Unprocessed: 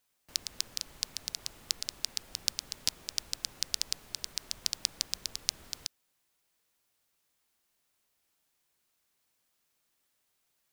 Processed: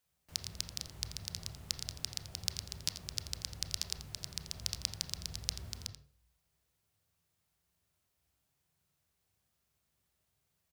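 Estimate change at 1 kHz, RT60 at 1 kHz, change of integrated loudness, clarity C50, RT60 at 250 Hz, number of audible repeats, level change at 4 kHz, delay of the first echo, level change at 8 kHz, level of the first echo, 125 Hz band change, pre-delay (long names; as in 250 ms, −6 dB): −3.0 dB, 0.40 s, −4.5 dB, 5.5 dB, 0.50 s, 1, −4.5 dB, 85 ms, −5.0 dB, −12.5 dB, +12.5 dB, 24 ms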